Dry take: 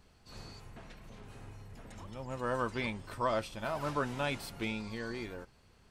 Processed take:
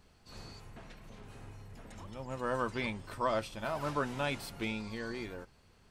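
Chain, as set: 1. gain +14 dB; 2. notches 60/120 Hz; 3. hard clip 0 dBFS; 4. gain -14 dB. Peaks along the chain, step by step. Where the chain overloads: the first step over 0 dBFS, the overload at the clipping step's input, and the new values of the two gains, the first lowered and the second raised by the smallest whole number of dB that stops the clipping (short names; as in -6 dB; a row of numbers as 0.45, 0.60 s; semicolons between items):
-5.5, -5.0, -5.0, -19.0 dBFS; no overload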